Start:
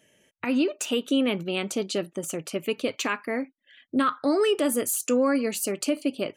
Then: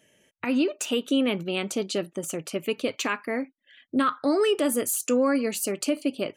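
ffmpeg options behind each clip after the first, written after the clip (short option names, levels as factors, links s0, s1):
-af anull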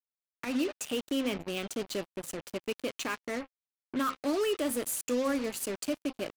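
-af "bandreject=f=263.8:t=h:w=4,bandreject=f=527.6:t=h:w=4,bandreject=f=791.4:t=h:w=4,bandreject=f=1055.2:t=h:w=4,bandreject=f=1319:t=h:w=4,bandreject=f=1582.8:t=h:w=4,bandreject=f=1846.6:t=h:w=4,bandreject=f=2110.4:t=h:w=4,bandreject=f=2374.2:t=h:w=4,bandreject=f=2638:t=h:w=4,bandreject=f=2901.8:t=h:w=4,bandreject=f=3165.6:t=h:w=4,bandreject=f=3429.4:t=h:w=4,bandreject=f=3693.2:t=h:w=4,bandreject=f=3957:t=h:w=4,bandreject=f=4220.8:t=h:w=4,bandreject=f=4484.6:t=h:w=4,bandreject=f=4748.4:t=h:w=4,bandreject=f=5012.2:t=h:w=4,acrusher=bits=4:mix=0:aa=0.5,volume=0.447"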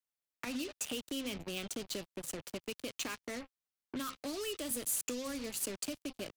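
-filter_complex "[0:a]acrossover=split=150|3000[s0][s1][s2];[s1]acompressor=threshold=0.01:ratio=6[s3];[s0][s3][s2]amix=inputs=3:normalize=0"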